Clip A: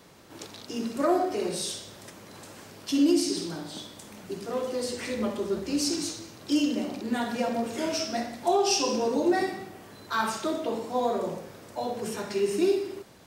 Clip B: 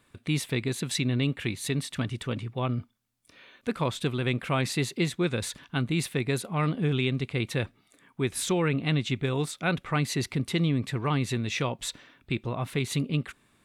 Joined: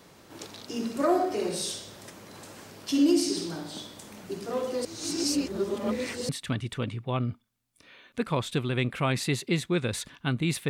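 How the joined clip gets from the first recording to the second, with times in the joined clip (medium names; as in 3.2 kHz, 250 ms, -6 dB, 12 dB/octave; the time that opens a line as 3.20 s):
clip A
4.85–6.29 s: reverse
6.29 s: go over to clip B from 1.78 s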